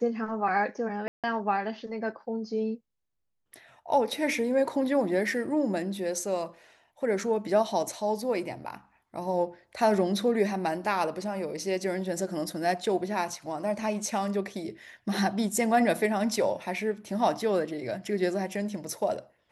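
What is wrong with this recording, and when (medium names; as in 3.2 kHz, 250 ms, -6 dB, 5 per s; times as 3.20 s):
1.08–1.24 s: dropout 157 ms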